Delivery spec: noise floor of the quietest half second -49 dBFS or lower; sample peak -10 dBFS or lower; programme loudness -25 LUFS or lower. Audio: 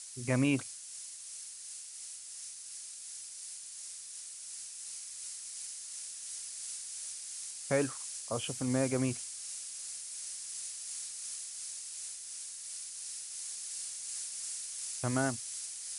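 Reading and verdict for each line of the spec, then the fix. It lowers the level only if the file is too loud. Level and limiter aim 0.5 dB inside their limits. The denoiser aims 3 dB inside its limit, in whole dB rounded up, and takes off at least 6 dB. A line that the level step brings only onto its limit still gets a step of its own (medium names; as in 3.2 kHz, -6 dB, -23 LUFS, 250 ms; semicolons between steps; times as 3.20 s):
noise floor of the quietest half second -47 dBFS: fail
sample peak -16.0 dBFS: pass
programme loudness -37.5 LUFS: pass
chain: noise reduction 6 dB, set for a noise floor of -47 dBFS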